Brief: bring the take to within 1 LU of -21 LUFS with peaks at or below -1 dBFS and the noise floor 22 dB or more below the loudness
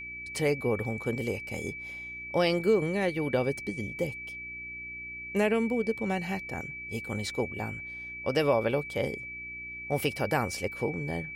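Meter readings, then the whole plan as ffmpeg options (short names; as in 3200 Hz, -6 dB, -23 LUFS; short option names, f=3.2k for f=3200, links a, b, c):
hum 60 Hz; harmonics up to 360 Hz; hum level -51 dBFS; steady tone 2300 Hz; tone level -38 dBFS; loudness -31.0 LUFS; peak -13.0 dBFS; loudness target -21.0 LUFS
-> -af "bandreject=f=60:t=h:w=4,bandreject=f=120:t=h:w=4,bandreject=f=180:t=h:w=4,bandreject=f=240:t=h:w=4,bandreject=f=300:t=h:w=4,bandreject=f=360:t=h:w=4"
-af "bandreject=f=2.3k:w=30"
-af "volume=10dB"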